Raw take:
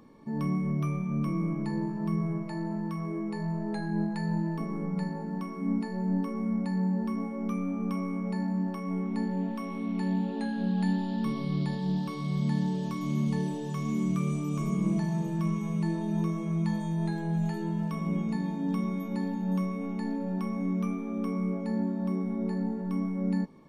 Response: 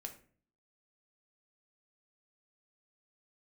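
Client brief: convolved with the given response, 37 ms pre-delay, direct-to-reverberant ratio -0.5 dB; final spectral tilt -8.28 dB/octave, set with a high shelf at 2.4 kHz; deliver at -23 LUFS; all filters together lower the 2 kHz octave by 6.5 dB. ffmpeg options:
-filter_complex "[0:a]equalizer=f=2000:t=o:g=-5.5,highshelf=f=2400:g=-4.5,asplit=2[s0][s1];[1:a]atrim=start_sample=2205,adelay=37[s2];[s1][s2]afir=irnorm=-1:irlink=0,volume=1.58[s3];[s0][s3]amix=inputs=2:normalize=0,volume=1.68"

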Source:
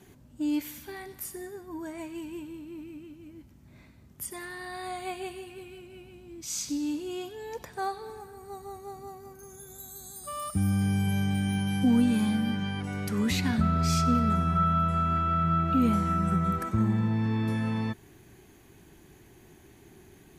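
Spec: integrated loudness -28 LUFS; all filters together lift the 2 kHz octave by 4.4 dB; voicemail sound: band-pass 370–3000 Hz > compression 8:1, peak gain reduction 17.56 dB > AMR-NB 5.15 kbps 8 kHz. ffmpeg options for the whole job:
-af "highpass=370,lowpass=3000,equalizer=f=2000:t=o:g=6.5,acompressor=threshold=0.01:ratio=8,volume=7.08" -ar 8000 -c:a libopencore_amrnb -b:a 5150

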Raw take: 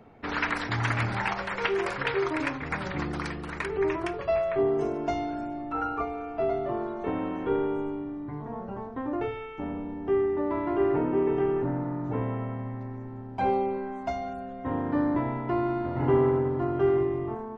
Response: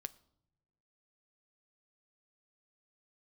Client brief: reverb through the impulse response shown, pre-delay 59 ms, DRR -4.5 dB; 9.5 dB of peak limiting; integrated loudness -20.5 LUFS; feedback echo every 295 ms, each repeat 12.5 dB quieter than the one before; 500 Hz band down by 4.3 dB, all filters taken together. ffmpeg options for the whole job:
-filter_complex "[0:a]equalizer=f=500:t=o:g=-6.5,alimiter=limit=0.075:level=0:latency=1,aecho=1:1:295|590|885:0.237|0.0569|0.0137,asplit=2[s0][s1];[1:a]atrim=start_sample=2205,adelay=59[s2];[s1][s2]afir=irnorm=-1:irlink=0,volume=2.51[s3];[s0][s3]amix=inputs=2:normalize=0,volume=2.24"

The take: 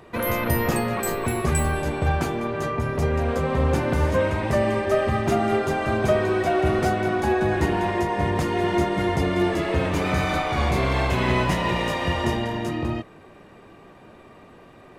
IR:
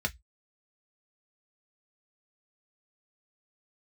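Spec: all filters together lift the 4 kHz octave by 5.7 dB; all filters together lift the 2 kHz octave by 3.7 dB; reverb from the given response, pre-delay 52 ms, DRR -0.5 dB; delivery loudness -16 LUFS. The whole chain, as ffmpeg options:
-filter_complex "[0:a]equalizer=f=2000:t=o:g=3,equalizer=f=4000:t=o:g=6.5,asplit=2[s0][s1];[1:a]atrim=start_sample=2205,adelay=52[s2];[s1][s2]afir=irnorm=-1:irlink=0,volume=0.531[s3];[s0][s3]amix=inputs=2:normalize=0,volume=1.19"

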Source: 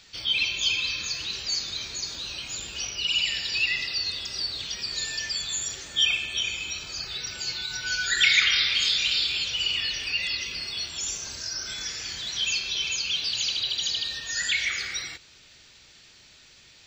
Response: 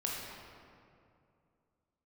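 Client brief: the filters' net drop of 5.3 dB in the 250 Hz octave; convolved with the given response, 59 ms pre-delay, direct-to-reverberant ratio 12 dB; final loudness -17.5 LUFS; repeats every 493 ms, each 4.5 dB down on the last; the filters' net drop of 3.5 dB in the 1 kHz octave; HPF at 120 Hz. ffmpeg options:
-filter_complex "[0:a]highpass=120,equalizer=f=250:t=o:g=-7,equalizer=f=1000:t=o:g=-5,aecho=1:1:493|986|1479|1972|2465|2958|3451|3944|4437:0.596|0.357|0.214|0.129|0.0772|0.0463|0.0278|0.0167|0.01,asplit=2[s0][s1];[1:a]atrim=start_sample=2205,adelay=59[s2];[s1][s2]afir=irnorm=-1:irlink=0,volume=0.168[s3];[s0][s3]amix=inputs=2:normalize=0,volume=2.11"

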